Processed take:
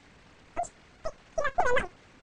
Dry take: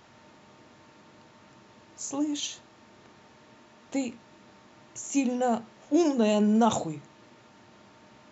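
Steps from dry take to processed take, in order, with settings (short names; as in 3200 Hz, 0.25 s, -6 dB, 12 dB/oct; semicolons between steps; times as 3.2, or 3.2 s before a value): tempo 1.6×; air absorption 230 m; on a send: feedback echo 67 ms, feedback 36%, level -18 dB; on the sum: LPC vocoder at 8 kHz pitch kept; speed mistake 33 rpm record played at 78 rpm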